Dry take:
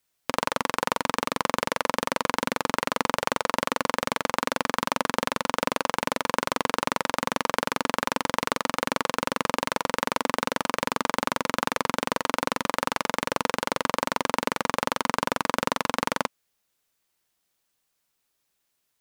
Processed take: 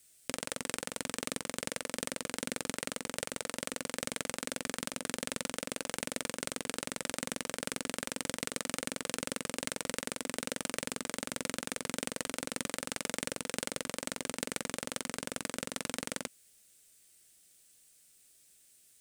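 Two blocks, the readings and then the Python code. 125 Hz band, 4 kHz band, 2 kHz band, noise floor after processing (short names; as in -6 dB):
-8.5 dB, -7.5 dB, -11.5 dB, -66 dBFS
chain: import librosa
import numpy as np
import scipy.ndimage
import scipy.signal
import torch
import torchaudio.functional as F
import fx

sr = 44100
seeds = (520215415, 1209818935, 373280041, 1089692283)

y = fx.peak_eq(x, sr, hz=8600.0, db=12.0, octaves=0.66)
y = fx.over_compress(y, sr, threshold_db=-34.0, ratio=-1.0)
y = fx.peak_eq(y, sr, hz=1000.0, db=-14.5, octaves=0.82)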